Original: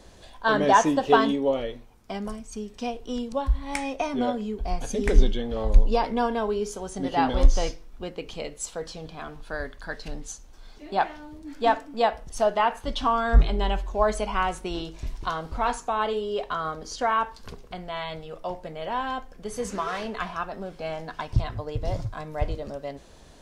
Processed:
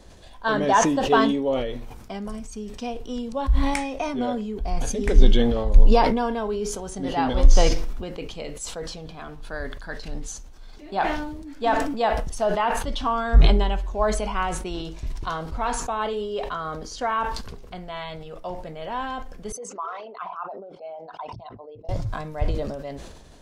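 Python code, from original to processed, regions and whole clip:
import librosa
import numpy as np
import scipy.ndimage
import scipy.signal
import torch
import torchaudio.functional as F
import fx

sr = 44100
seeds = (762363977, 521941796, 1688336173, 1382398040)

y = fx.chain(x, sr, fx.envelope_sharpen(power=2.0),
    fx.highpass(hz=680.0, slope=12),
    fx.peak_eq(hz=1700.0, db=-14.5, octaves=0.31), at=(19.52, 21.89))
y = fx.low_shelf(y, sr, hz=190.0, db=3.5)
y = fx.sustainer(y, sr, db_per_s=42.0)
y = y * 10.0 ** (-1.5 / 20.0)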